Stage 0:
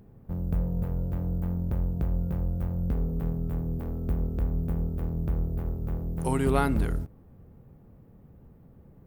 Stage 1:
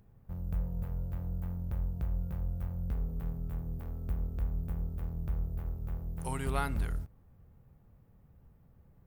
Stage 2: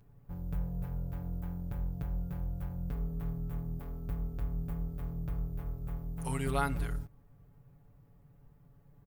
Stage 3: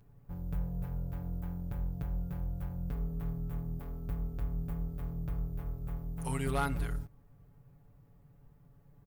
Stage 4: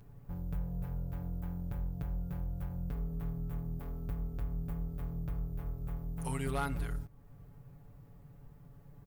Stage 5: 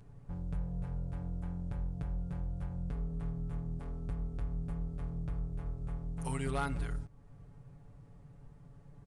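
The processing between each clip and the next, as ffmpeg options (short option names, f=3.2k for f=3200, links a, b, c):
-af "equalizer=f=310:w=0.62:g=-10.5,volume=-4dB"
-af "aecho=1:1:7:0.88,volume=-1.5dB"
-af "asoftclip=type=hard:threshold=-24dB"
-af "acompressor=threshold=-51dB:ratio=1.5,volume=5.5dB"
-af "aresample=22050,aresample=44100"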